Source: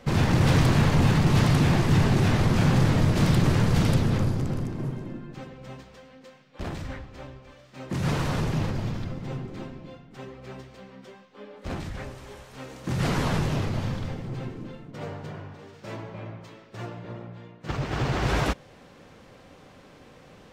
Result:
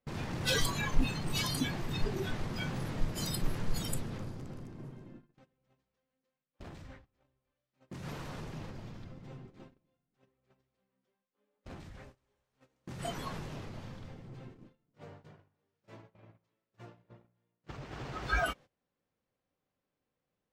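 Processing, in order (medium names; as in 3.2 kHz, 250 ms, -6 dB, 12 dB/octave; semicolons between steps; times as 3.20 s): spectral noise reduction 21 dB; gate -57 dBFS, range -22 dB; dynamic bell 100 Hz, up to -4 dB, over -52 dBFS, Q 0.75; trim +6.5 dB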